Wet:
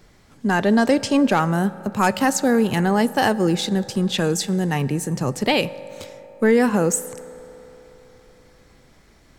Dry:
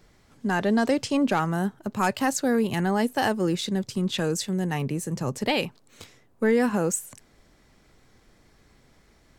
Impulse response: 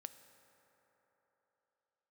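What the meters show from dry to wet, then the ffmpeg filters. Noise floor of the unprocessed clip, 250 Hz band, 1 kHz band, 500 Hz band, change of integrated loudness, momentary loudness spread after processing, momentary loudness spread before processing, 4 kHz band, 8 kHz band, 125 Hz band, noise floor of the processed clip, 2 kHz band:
-60 dBFS, +5.5 dB, +5.5 dB, +5.5 dB, +5.5 dB, 11 LU, 7 LU, +5.5 dB, +5.5 dB, +5.5 dB, -53 dBFS, +5.5 dB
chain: -filter_complex "[0:a]asplit=2[s0][s1];[1:a]atrim=start_sample=2205[s2];[s1][s2]afir=irnorm=-1:irlink=0,volume=1.68[s3];[s0][s3]amix=inputs=2:normalize=0"

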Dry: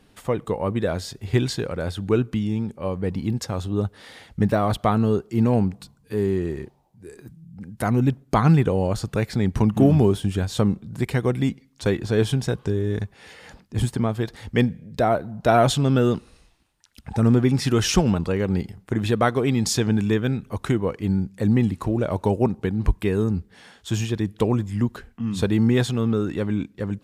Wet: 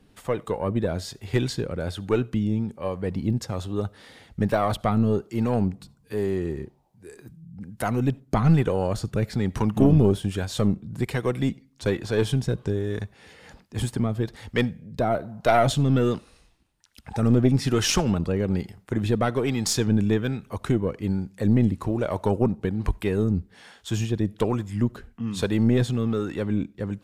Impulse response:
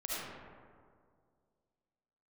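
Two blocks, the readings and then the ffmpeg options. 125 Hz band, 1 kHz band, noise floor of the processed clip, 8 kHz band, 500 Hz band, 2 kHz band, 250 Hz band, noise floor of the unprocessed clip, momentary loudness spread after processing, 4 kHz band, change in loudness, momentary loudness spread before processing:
-2.0 dB, -2.5 dB, -59 dBFS, -1.0 dB, -2.0 dB, -2.0 dB, -2.0 dB, -58 dBFS, 10 LU, -1.5 dB, -2.0 dB, 10 LU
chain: -filter_complex "[0:a]acrossover=split=430[s0][s1];[s0]aeval=exprs='val(0)*(1-0.5/2+0.5/2*cos(2*PI*1.2*n/s))':c=same[s2];[s1]aeval=exprs='val(0)*(1-0.5/2-0.5/2*cos(2*PI*1.2*n/s))':c=same[s3];[s2][s3]amix=inputs=2:normalize=0,aeval=exprs='0.562*(cos(1*acos(clip(val(0)/0.562,-1,1)))-cos(1*PI/2))+0.2*(cos(2*acos(clip(val(0)/0.562,-1,1)))-cos(2*PI/2))':c=same,asplit=2[s4][s5];[1:a]atrim=start_sample=2205,atrim=end_sample=4410[s6];[s5][s6]afir=irnorm=-1:irlink=0,volume=0.0708[s7];[s4][s7]amix=inputs=2:normalize=0"

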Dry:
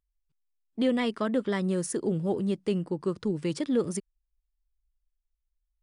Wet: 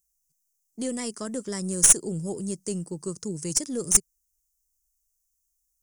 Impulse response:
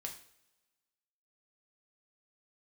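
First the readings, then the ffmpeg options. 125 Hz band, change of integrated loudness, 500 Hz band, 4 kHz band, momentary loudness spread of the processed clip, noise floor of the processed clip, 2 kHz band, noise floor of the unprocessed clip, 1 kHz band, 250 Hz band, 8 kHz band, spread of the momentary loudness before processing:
-1.5 dB, +5.0 dB, -5.0 dB, +4.5 dB, 17 LU, -76 dBFS, -2.0 dB, -82 dBFS, -5.0 dB, -4.0 dB, +21.0 dB, 4 LU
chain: -af "aexciter=amount=15:drive=6.5:freq=5500,equalizer=f=160:t=o:w=0.67:g=7,equalizer=f=400:t=o:w=0.67:g=3,equalizer=f=6300:t=o:w=0.67:g=9,aeval=exprs='(tanh(0.794*val(0)+0.5)-tanh(0.5))/0.794':c=same,volume=0.531"

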